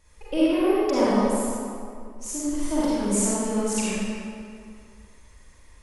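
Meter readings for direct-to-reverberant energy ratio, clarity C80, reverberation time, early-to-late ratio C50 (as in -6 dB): -9.5 dB, -3.0 dB, 2.3 s, -6.5 dB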